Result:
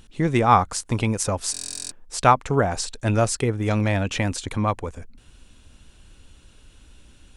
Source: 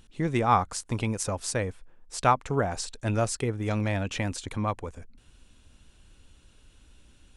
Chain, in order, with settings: buffer glitch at 1.52 s, samples 1024, times 16; trim +6 dB

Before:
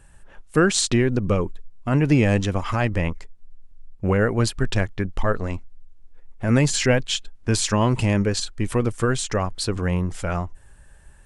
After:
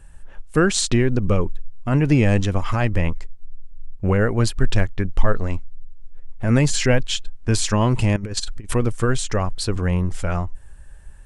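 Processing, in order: bass shelf 63 Hz +10.5 dB; 8.16–8.74 s: compressor with a negative ratio -24 dBFS, ratio -0.5

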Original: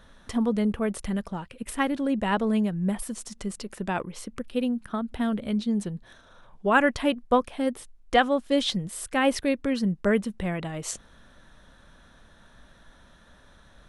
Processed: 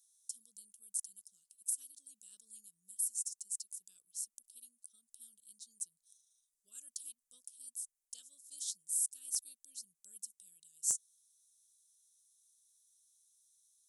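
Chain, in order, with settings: inverse Chebyshev high-pass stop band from 2.2 kHz, stop band 60 dB; one-sided clip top -26 dBFS; trim +4.5 dB

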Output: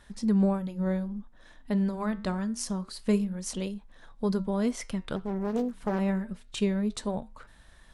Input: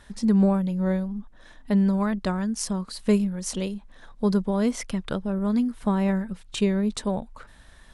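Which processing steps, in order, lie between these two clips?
flange 0.26 Hz, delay 5.4 ms, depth 7.6 ms, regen -84%; 5.16–5.99 s: loudspeaker Doppler distortion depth 0.88 ms

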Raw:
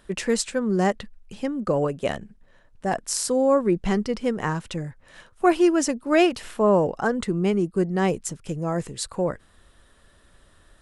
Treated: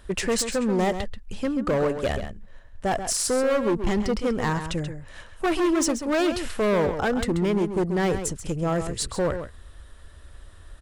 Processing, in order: resonant low shelf 110 Hz +8.5 dB, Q 1.5; in parallel at -0.5 dB: peak limiter -14.5 dBFS, peak gain reduction 8.5 dB; on the sum: hard clipper -16.5 dBFS, distortion -9 dB; echo from a far wall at 23 m, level -9 dB; trim -3 dB

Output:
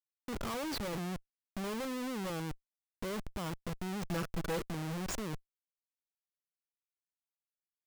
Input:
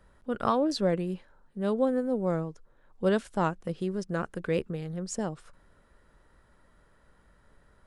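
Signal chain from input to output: Schmitt trigger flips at -38 dBFS; 4.04–4.62 s: comb 6.1 ms, depth 68%; trim -5.5 dB

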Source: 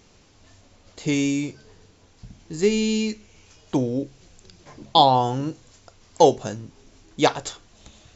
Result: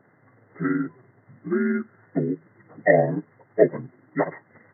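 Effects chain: frequency axis rescaled in octaves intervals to 77%; FFT band-pass 100–2100 Hz; granular stretch 0.58×, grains 95 ms; trim +2 dB

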